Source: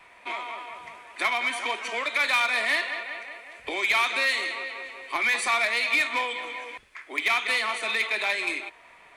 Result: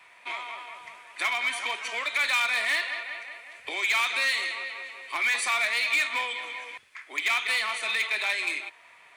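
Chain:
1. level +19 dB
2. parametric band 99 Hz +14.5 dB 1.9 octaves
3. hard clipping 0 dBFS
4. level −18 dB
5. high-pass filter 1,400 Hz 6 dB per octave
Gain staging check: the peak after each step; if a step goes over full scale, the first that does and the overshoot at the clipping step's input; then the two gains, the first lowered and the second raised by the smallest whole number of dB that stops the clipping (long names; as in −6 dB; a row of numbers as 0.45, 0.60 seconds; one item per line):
+5.0, +6.0, 0.0, −18.0, −16.0 dBFS
step 1, 6.0 dB
step 1 +13 dB, step 4 −12 dB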